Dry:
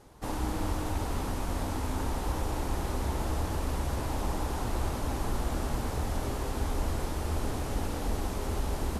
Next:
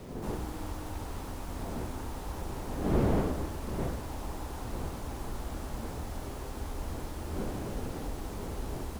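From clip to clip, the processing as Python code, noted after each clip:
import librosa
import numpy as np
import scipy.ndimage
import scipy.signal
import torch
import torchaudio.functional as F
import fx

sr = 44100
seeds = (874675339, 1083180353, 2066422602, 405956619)

y = fx.dmg_wind(x, sr, seeds[0], corner_hz=370.0, level_db=-31.0)
y = fx.quant_dither(y, sr, seeds[1], bits=8, dither='none')
y = y * 10.0 ** (-7.0 / 20.0)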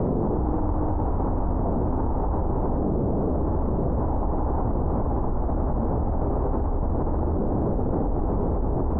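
y = scipy.signal.sosfilt(scipy.signal.butter(4, 1000.0, 'lowpass', fs=sr, output='sos'), x)
y = fx.env_flatten(y, sr, amount_pct=100)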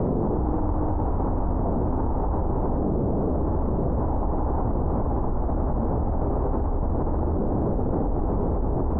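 y = x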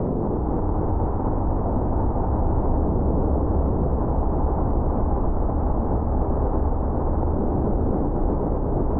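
y = fx.echo_heads(x, sr, ms=252, heads='first and second', feedback_pct=72, wet_db=-10.0)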